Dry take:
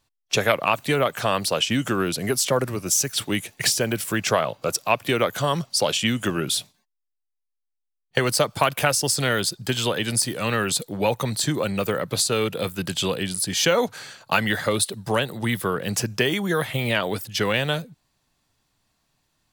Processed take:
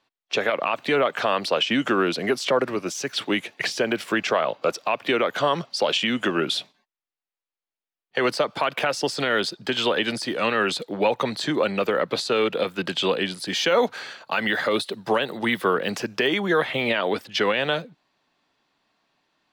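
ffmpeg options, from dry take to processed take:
-filter_complex "[0:a]asettb=1/sr,asplit=3[a][b][c];[a]atrim=end=13.454[d];[b]atrim=start=13.45:end=16.28,asetpts=PTS-STARTPTS,afade=t=in:d=0.004:c=qsin,afade=t=out:st=2.826:d=0.004:c=qsin,highshelf=f=9.6k:g=9.5[e];[c]atrim=start=16.276[f];[d][e]acrossfade=d=0.004:c1=hsin:c2=qsin[g];[g][f]acrossfade=d=0.004:c1=qsin:c2=hsin,alimiter=limit=-14dB:level=0:latency=1:release=78,acrossover=split=210 4500:gain=0.0708 1 0.0794[h][i][j];[h][i][j]amix=inputs=3:normalize=0,volume=4.5dB"

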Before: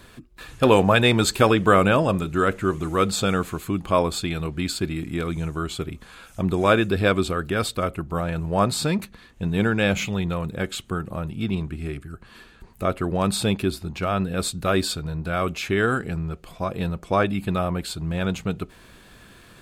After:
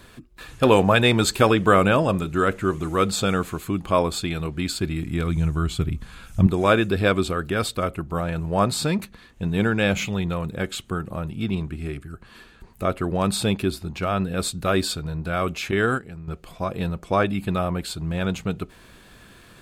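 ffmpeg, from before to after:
-filter_complex "[0:a]asettb=1/sr,asplit=3[a][b][c];[a]atrim=end=4.664[d];[b]atrim=start=4.66:end=6.47,asetpts=PTS-STARTPTS,afade=t=in:d=0.004:c=qsin,afade=t=out:st=1.806:d=0.004:c=qsin,asubboost=boost=8:cutoff=210[e];[c]atrim=start=6.466[f];[d][e]acrossfade=d=0.004:c1=hsin:c2=qsin[g];[g][f]acrossfade=d=0.004:c1=qsin:c2=hsin,asettb=1/sr,asplit=3[h][i][j];[h]atrim=end=15.714[k];[i]atrim=start=15.71:end=16.28,asetpts=PTS-STARTPTS,afade=t=in:d=0.004:c=qsin,afade=t=out:st=0.566:d=0.004:c=qsin,agate=range=-10dB:threshold=-24dB:ratio=16:release=100:detection=peak[l];[j]atrim=start=16.276[m];[k][l]acrossfade=d=0.004:c1=hsin:c2=qsin[n];[n][m]acrossfade=d=0.004:c1=qsin:c2=hsin"

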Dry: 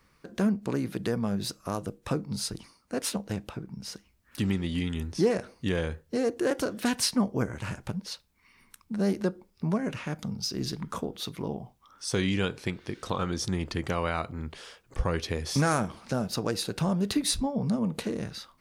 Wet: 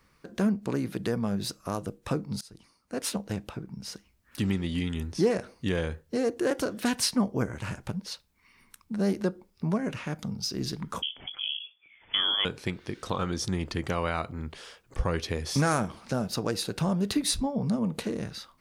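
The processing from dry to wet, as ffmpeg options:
-filter_complex "[0:a]asettb=1/sr,asplit=3[a][b][c];[a]atrim=end=11.024[d];[b]atrim=start=11.02:end=12.45,asetpts=PTS-STARTPTS,afade=t=in:d=0.004:c=qsin,afade=t=out:st=1.426:d=0.004:c=qsin,lowpass=f=3k:t=q:w=0.5098,lowpass=f=3k:t=q:w=0.6013,lowpass=f=3k:t=q:w=0.9,lowpass=f=3k:t=q:w=2.563,afreqshift=-3500[e];[c]atrim=start=12.446[f];[d][e]acrossfade=d=0.004:c1=hsin:c2=qsin[g];[g][f]acrossfade=d=0.004:c1=qsin:c2=hsin,asplit=2[h][i];[h]atrim=end=2.41,asetpts=PTS-STARTPTS,afade=t=out:st=2.406:d=0.004:c=hsin:silence=0.0668344[j];[i]atrim=start=2.41,asetpts=PTS-STARTPTS,afade=t=in:d=0.7:silence=0.0668344[k];[j][k]concat=n=2:v=0:a=1"

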